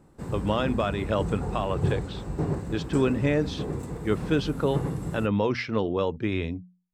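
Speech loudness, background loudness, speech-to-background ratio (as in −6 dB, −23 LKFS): −28.0 LKFS, −32.5 LKFS, 4.5 dB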